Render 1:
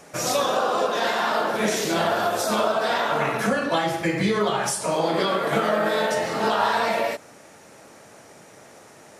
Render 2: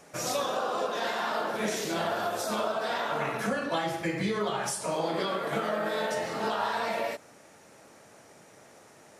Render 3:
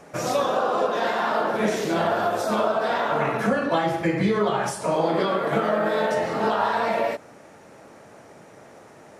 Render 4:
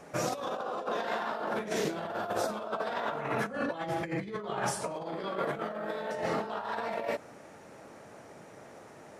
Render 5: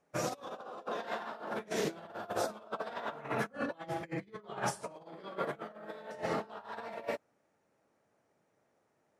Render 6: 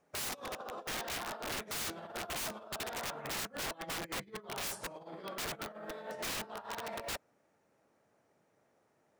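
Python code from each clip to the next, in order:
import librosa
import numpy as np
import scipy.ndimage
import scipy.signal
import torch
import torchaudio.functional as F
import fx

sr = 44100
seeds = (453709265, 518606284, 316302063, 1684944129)

y1 = fx.rider(x, sr, range_db=10, speed_s=0.5)
y1 = F.gain(torch.from_numpy(y1), -7.5).numpy()
y2 = fx.high_shelf(y1, sr, hz=2700.0, db=-11.0)
y2 = F.gain(torch.from_numpy(y2), 8.5).numpy()
y3 = fx.over_compress(y2, sr, threshold_db=-26.0, ratio=-0.5)
y3 = F.gain(torch.from_numpy(y3), -7.0).numpy()
y4 = fx.upward_expand(y3, sr, threshold_db=-45.0, expansion=2.5)
y5 = (np.mod(10.0 ** (35.0 / 20.0) * y4 + 1.0, 2.0) - 1.0) / 10.0 ** (35.0 / 20.0)
y5 = F.gain(torch.from_numpy(y5), 2.0).numpy()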